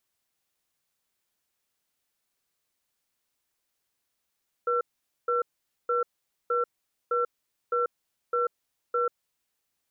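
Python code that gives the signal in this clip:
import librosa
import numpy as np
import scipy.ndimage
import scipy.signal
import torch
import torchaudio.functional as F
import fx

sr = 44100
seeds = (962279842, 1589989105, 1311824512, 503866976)

y = fx.cadence(sr, length_s=4.75, low_hz=482.0, high_hz=1350.0, on_s=0.14, off_s=0.47, level_db=-25.5)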